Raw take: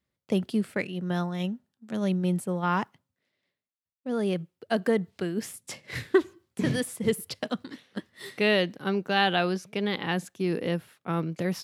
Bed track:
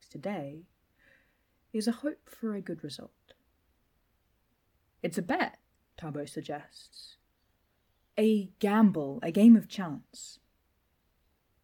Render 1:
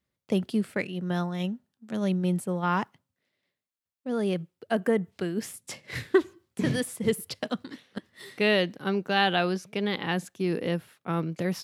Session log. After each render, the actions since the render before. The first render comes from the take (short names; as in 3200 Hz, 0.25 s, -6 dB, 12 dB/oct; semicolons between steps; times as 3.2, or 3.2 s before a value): 4.71–5.12 bell 4300 Hz -12 dB 0.56 oct; 7.98–8.4 compressor, threshold -40 dBFS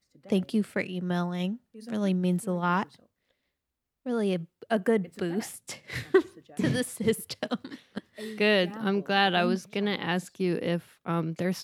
add bed track -14.5 dB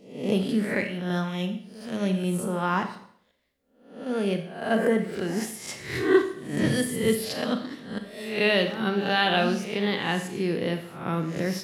spectral swells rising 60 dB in 0.58 s; Schroeder reverb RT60 0.61 s, combs from 28 ms, DRR 6.5 dB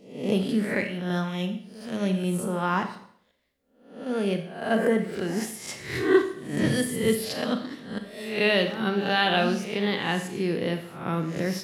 nothing audible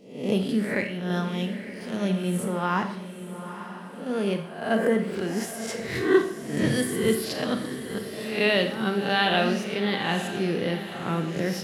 diffused feedback echo 0.902 s, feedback 43%, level -11 dB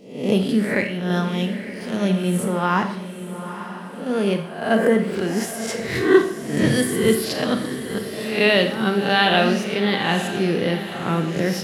gain +5.5 dB